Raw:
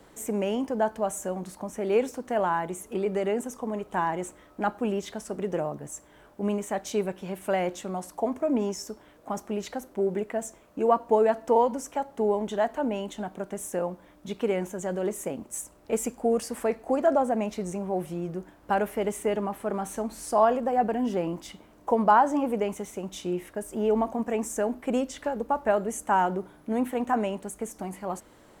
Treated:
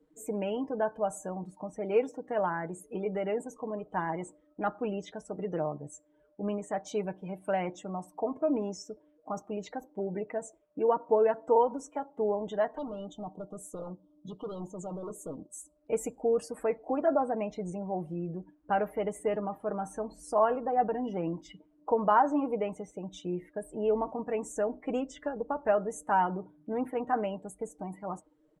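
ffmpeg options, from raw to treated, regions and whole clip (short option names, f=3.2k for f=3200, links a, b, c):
-filter_complex "[0:a]asettb=1/sr,asplit=3[a][b][c];[a]atrim=end=12.784[d];[b]atrim=start=12.78:end=15.76,asetpts=PTS-STARTPTS,afade=t=in:d=0.004:c=qsin,afade=t=out:st=2.976:d=0.004:c=qsin,asoftclip=type=hard:threshold=-31dB,asuperstop=centerf=2000:order=8:qfactor=1.2[e];[c]atrim=start=15.756[f];[d][e]acrossfade=d=0.004:c1=hsin:c2=qsin[g];[g][f]acrossfade=d=0.004:c1=qsin:c2=hsin,aecho=1:1:6.5:0.48,afftdn=nr=22:nf=-42,highshelf=f=4.6k:g=-5,volume=-4.5dB"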